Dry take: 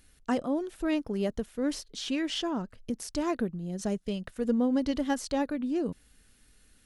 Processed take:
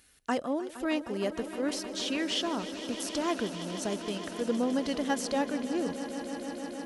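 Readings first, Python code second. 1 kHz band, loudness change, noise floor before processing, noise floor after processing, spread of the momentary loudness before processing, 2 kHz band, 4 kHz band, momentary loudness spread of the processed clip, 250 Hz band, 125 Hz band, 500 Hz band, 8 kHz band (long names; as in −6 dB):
+2.0 dB, −1.0 dB, −63 dBFS, −47 dBFS, 8 LU, +3.5 dB, +3.5 dB, 7 LU, −2.5 dB, −4.5 dB, +0.5 dB, +3.5 dB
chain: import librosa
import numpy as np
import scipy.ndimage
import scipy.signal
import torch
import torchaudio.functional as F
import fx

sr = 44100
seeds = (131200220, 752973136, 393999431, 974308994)

y = scipy.signal.sosfilt(scipy.signal.butter(2, 40.0, 'highpass', fs=sr, output='sos'), x)
y = fx.low_shelf(y, sr, hz=300.0, db=-11.0)
y = fx.echo_swell(y, sr, ms=155, loudest=5, wet_db=-15.0)
y = y * 10.0 ** (2.5 / 20.0)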